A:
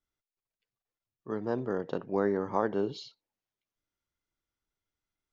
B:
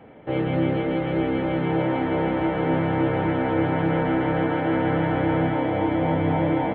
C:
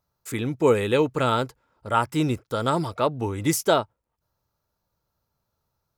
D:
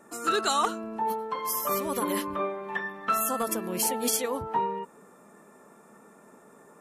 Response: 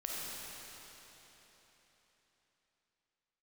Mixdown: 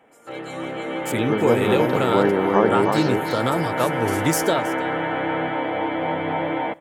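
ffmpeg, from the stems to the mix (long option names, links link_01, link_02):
-filter_complex "[0:a]volume=3dB,asplit=3[link_01][link_02][link_03];[link_02]volume=-3.5dB[link_04];[1:a]highpass=frequency=820:poles=1,volume=-3dB,asplit=2[link_05][link_06];[link_06]volume=-24dB[link_07];[2:a]highpass=frequency=100:width=0.5412,highpass=frequency=100:width=1.3066,acompressor=threshold=-21dB:ratio=6,adelay=800,volume=-3dB,asplit=2[link_08][link_09];[link_09]volume=-18dB[link_10];[3:a]volume=-19.5dB,asplit=3[link_11][link_12][link_13];[link_12]volume=-16dB[link_14];[link_13]volume=-8.5dB[link_15];[link_03]apad=whole_len=300311[link_16];[link_11][link_16]sidechaincompress=threshold=-33dB:ratio=8:attack=16:release=773[link_17];[4:a]atrim=start_sample=2205[link_18];[link_14][link_18]afir=irnorm=-1:irlink=0[link_19];[link_04][link_07][link_10][link_15]amix=inputs=4:normalize=0,aecho=0:1:321:1[link_20];[link_01][link_05][link_08][link_17][link_19][link_20]amix=inputs=6:normalize=0,dynaudnorm=framelen=520:gausssize=3:maxgain=8dB"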